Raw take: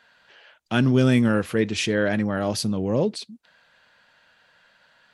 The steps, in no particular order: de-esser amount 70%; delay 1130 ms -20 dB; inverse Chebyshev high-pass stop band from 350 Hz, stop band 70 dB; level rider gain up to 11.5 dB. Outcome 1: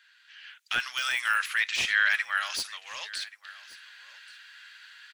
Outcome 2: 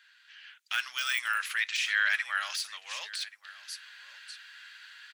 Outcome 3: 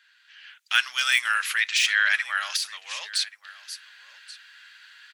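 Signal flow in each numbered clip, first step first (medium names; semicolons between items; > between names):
inverse Chebyshev high-pass > level rider > de-esser > delay; level rider > delay > de-esser > inverse Chebyshev high-pass; delay > de-esser > inverse Chebyshev high-pass > level rider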